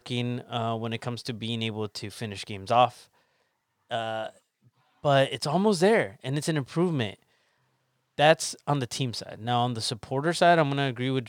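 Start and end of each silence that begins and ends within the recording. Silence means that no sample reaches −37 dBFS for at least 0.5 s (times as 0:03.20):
0:02.90–0:03.91
0:04.29–0:05.04
0:07.14–0:08.18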